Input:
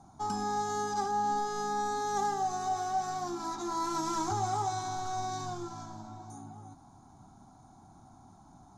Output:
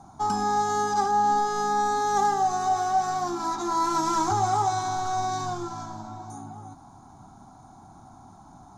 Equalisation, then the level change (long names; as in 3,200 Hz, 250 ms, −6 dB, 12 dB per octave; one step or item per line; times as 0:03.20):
parametric band 1,100 Hz +3.5 dB 1.7 octaves
+5.5 dB